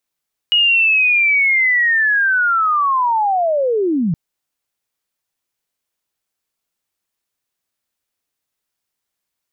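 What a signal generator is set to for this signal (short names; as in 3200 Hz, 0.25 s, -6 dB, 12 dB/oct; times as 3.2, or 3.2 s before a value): chirp linear 2900 Hz -> 150 Hz -10 dBFS -> -14 dBFS 3.62 s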